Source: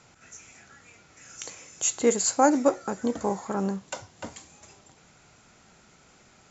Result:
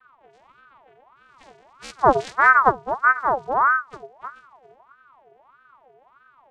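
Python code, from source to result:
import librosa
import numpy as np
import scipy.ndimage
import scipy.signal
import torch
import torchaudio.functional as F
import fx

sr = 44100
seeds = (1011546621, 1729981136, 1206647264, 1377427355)

y = fx.partial_stretch(x, sr, pct=77)
y = fx.env_phaser(y, sr, low_hz=580.0, high_hz=1400.0, full_db=-29.0)
y = fx.vocoder(y, sr, bands=4, carrier='square', carrier_hz=132.0)
y = fx.peak_eq(y, sr, hz=210.0, db=10.0, octaves=3.0)
y = fx.ring_lfo(y, sr, carrier_hz=980.0, swing_pct=45, hz=1.6)
y = y * 10.0 ** (3.5 / 20.0)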